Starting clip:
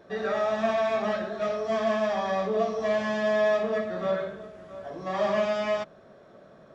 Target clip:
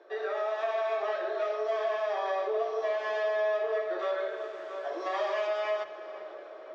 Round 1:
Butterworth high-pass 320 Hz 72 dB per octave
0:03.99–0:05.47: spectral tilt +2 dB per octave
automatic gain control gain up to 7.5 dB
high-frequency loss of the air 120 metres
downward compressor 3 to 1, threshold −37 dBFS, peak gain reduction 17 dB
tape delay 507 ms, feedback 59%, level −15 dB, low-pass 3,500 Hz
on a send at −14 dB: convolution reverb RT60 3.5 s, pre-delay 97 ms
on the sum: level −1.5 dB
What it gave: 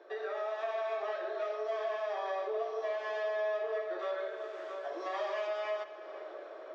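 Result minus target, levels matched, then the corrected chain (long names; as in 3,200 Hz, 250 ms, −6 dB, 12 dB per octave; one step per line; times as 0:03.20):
downward compressor: peak gain reduction +5 dB
Butterworth high-pass 320 Hz 72 dB per octave
0:03.99–0:05.47: spectral tilt +2 dB per octave
automatic gain control gain up to 7.5 dB
high-frequency loss of the air 120 metres
downward compressor 3 to 1, threshold −29.5 dBFS, peak gain reduction 12 dB
tape delay 507 ms, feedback 59%, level −15 dB, low-pass 3,500 Hz
on a send at −14 dB: convolution reverb RT60 3.5 s, pre-delay 97 ms
on the sum: level −1.5 dB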